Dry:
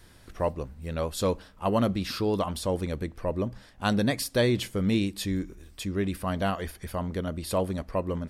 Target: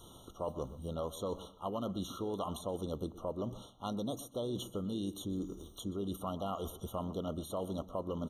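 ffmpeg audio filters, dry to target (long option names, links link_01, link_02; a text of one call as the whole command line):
ffmpeg -i in.wav -filter_complex "[0:a]areverse,acompressor=threshold=-33dB:ratio=12,areverse,lowshelf=frequency=110:gain=-11.5,asplit=2[link_01][link_02];[link_02]adelay=122,lowpass=frequency=3600:poles=1,volume=-18dB,asplit=2[link_03][link_04];[link_04]adelay=122,lowpass=frequency=3600:poles=1,volume=0.18[link_05];[link_03][link_05]amix=inputs=2:normalize=0[link_06];[link_01][link_06]amix=inputs=2:normalize=0,asplit=2[link_07][link_08];[link_08]asetrate=52444,aresample=44100,atempo=0.840896,volume=-15dB[link_09];[link_07][link_09]amix=inputs=2:normalize=0,acrossover=split=2000|4500[link_10][link_11][link_12];[link_10]acompressor=threshold=-38dB:ratio=4[link_13];[link_11]acompressor=threshold=-58dB:ratio=4[link_14];[link_12]acompressor=threshold=-51dB:ratio=4[link_15];[link_13][link_14][link_15]amix=inputs=3:normalize=0,afftfilt=real='re*eq(mod(floor(b*sr/1024/1400),2),0)':imag='im*eq(mod(floor(b*sr/1024/1400),2),0)':win_size=1024:overlap=0.75,volume=4dB" out.wav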